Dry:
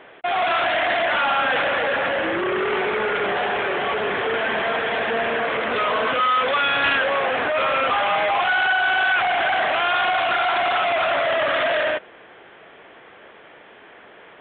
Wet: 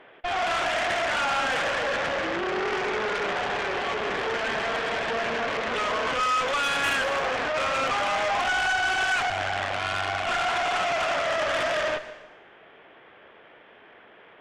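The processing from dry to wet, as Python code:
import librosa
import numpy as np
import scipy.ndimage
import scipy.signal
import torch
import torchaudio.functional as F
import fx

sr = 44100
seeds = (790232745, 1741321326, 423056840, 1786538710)

y = fx.ring_mod(x, sr, carrier_hz=48.0, at=(9.29, 10.25), fade=0.02)
y = fx.cheby_harmonics(y, sr, harmonics=(6,), levels_db=(-16,), full_scale_db=-10.0)
y = fx.rev_plate(y, sr, seeds[0], rt60_s=0.92, hf_ratio=0.95, predelay_ms=105, drr_db=13.0)
y = y * 10.0 ** (-6.0 / 20.0)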